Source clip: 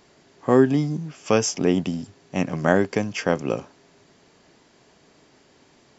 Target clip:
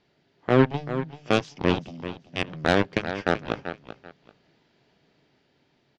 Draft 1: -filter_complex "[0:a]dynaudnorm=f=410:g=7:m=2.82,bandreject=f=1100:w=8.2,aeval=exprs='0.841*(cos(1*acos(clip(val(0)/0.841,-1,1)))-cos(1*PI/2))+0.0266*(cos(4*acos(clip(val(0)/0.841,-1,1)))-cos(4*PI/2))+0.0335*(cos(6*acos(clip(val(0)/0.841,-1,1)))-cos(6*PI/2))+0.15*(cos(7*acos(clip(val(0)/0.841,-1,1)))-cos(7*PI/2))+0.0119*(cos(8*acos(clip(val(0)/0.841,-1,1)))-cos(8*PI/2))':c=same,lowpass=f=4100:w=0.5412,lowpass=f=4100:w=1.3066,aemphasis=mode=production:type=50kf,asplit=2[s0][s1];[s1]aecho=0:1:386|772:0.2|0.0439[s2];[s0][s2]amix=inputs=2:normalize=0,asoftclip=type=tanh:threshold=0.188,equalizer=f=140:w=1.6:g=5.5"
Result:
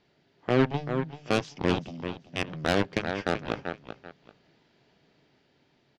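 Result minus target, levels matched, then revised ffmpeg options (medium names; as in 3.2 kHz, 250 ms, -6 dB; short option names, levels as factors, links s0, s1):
saturation: distortion +7 dB
-filter_complex "[0:a]dynaudnorm=f=410:g=7:m=2.82,bandreject=f=1100:w=8.2,aeval=exprs='0.841*(cos(1*acos(clip(val(0)/0.841,-1,1)))-cos(1*PI/2))+0.0266*(cos(4*acos(clip(val(0)/0.841,-1,1)))-cos(4*PI/2))+0.0335*(cos(6*acos(clip(val(0)/0.841,-1,1)))-cos(6*PI/2))+0.15*(cos(7*acos(clip(val(0)/0.841,-1,1)))-cos(7*PI/2))+0.0119*(cos(8*acos(clip(val(0)/0.841,-1,1)))-cos(8*PI/2))':c=same,lowpass=f=4100:w=0.5412,lowpass=f=4100:w=1.3066,aemphasis=mode=production:type=50kf,asplit=2[s0][s1];[s1]aecho=0:1:386|772:0.2|0.0439[s2];[s0][s2]amix=inputs=2:normalize=0,asoftclip=type=tanh:threshold=0.398,equalizer=f=140:w=1.6:g=5.5"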